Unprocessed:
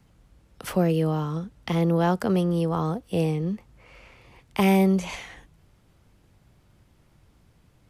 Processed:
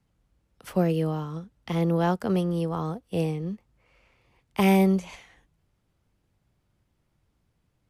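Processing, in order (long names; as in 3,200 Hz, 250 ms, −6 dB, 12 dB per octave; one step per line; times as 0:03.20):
expander for the loud parts 1.5 to 1, over −42 dBFS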